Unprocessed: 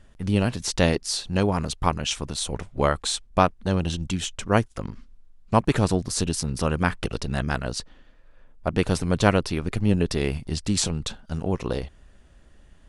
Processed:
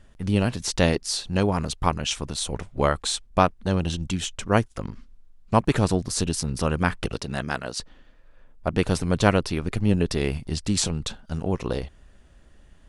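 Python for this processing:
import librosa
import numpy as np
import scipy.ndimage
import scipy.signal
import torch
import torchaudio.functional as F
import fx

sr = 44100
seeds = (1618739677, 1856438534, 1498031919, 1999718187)

y = fx.highpass(x, sr, hz=fx.line((7.14, 110.0), (7.77, 410.0)), slope=6, at=(7.14, 7.77), fade=0.02)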